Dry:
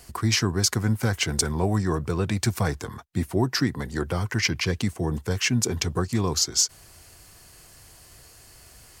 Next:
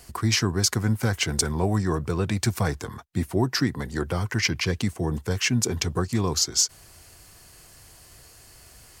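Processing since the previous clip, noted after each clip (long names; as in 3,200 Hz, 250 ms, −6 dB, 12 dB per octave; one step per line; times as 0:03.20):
no processing that can be heard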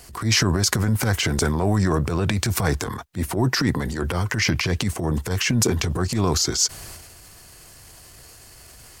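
transient designer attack −9 dB, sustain +8 dB
level +4 dB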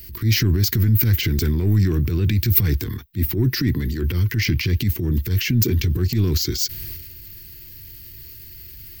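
soft clipping −12 dBFS, distortion −20 dB
drawn EQ curve 110 Hz 0 dB, 170 Hz −6 dB, 350 Hz −4 dB, 660 Hz −29 dB, 1,300 Hz −19 dB, 2,000 Hz −7 dB, 4,600 Hz −6 dB, 9,800 Hz −21 dB, 15,000 Hz +14 dB
level +6.5 dB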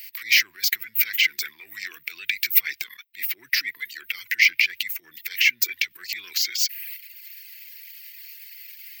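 reverb reduction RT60 0.75 s
high-pass with resonance 2,200 Hz, resonance Q 3.9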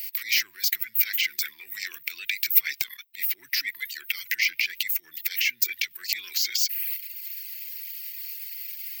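high-shelf EQ 2,900 Hz +11.5 dB
in parallel at −2.5 dB: compressor whose output falls as the input rises −19 dBFS, ratio −0.5
on the sum: level −12.5 dB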